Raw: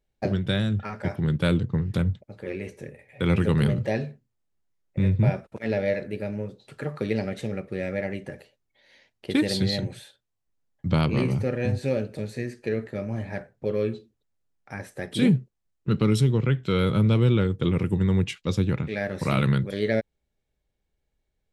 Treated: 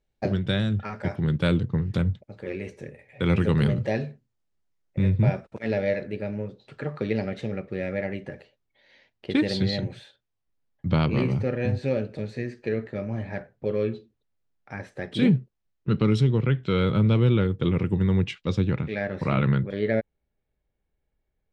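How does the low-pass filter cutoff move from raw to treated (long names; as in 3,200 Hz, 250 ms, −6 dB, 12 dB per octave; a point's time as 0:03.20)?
0:05.73 7,100 Hz
0:06.24 4,500 Hz
0:18.87 4,500 Hz
0:19.32 2,500 Hz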